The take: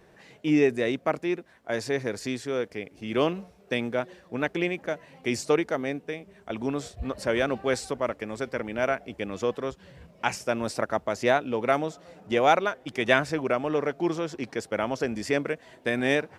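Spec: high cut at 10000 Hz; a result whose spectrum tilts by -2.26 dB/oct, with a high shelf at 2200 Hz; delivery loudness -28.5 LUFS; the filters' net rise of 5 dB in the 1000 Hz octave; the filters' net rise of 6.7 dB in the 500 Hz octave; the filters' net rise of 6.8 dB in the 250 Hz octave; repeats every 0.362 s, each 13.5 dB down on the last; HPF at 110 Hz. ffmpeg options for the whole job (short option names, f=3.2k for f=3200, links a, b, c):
-af "highpass=110,lowpass=10k,equalizer=f=250:t=o:g=6.5,equalizer=f=500:t=o:g=5.5,equalizer=f=1k:t=o:g=5,highshelf=f=2.2k:g=-3.5,aecho=1:1:362|724:0.211|0.0444,volume=-6.5dB"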